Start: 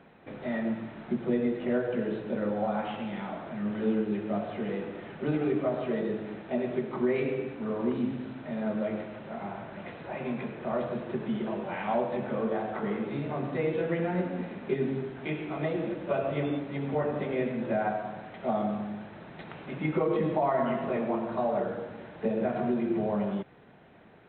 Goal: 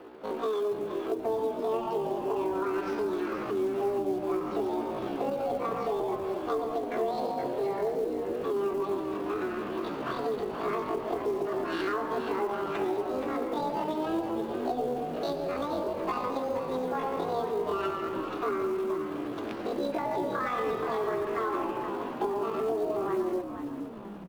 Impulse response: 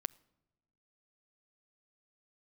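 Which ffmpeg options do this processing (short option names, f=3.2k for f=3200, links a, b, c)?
-filter_complex "[0:a]adynamicsmooth=sensitivity=4.5:basefreq=1.4k,equalizer=f=200:t=o:w=1.5:g=10.5,acompressor=threshold=-32dB:ratio=5,acrusher=bits=7:mode=log:mix=0:aa=0.000001,adynamicequalizer=threshold=0.002:dfrequency=150:dqfactor=5.8:tfrequency=150:tqfactor=5.8:attack=5:release=100:ratio=0.375:range=3:mode=cutabove:tftype=bell,asetrate=80880,aresample=44100,atempo=0.545254,asplit=6[a][b][c][d][e][f];[b]adelay=473,afreqshift=-85,volume=-8dB[g];[c]adelay=946,afreqshift=-170,volume=-15.5dB[h];[d]adelay=1419,afreqshift=-255,volume=-23.1dB[i];[e]adelay=1892,afreqshift=-340,volume=-30.6dB[j];[f]adelay=2365,afreqshift=-425,volume=-38.1dB[k];[a][g][h][i][j][k]amix=inputs=6:normalize=0,volume=3.5dB"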